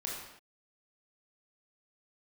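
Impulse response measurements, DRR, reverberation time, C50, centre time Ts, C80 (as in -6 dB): -3.5 dB, not exponential, 1.0 dB, 63 ms, 3.5 dB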